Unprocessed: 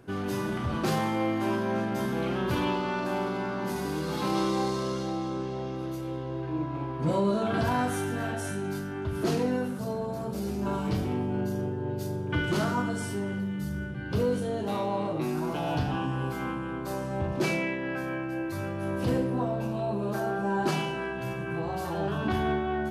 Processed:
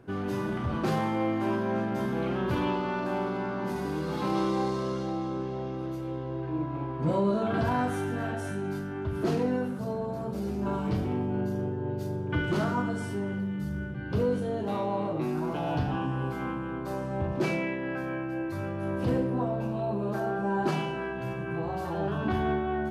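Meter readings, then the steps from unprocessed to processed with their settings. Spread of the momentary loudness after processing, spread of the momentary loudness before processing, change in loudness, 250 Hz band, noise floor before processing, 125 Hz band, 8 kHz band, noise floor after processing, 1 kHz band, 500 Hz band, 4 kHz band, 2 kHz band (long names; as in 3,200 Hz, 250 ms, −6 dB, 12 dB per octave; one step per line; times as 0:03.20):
6 LU, 6 LU, −0.5 dB, 0.0 dB, −34 dBFS, 0.0 dB, −8.0 dB, −35 dBFS, −0.5 dB, 0.0 dB, −5.0 dB, −2.0 dB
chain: high-shelf EQ 3,400 Hz −9.5 dB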